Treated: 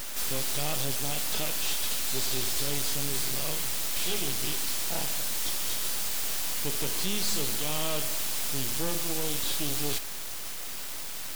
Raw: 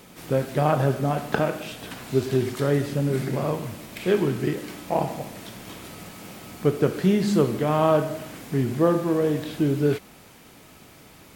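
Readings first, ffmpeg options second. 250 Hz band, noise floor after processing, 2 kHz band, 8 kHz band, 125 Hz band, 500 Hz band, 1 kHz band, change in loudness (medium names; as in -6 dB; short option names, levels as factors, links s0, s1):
-15.0 dB, -35 dBFS, -1.5 dB, +14.0 dB, -14.0 dB, -15.5 dB, -11.0 dB, -5.0 dB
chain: -af "aexciter=amount=13.2:drive=7.5:freq=2600,aeval=exprs='(tanh(11.2*val(0)+0.7)-tanh(0.7))/11.2':c=same,aeval=exprs='abs(val(0))':c=same,volume=0.668"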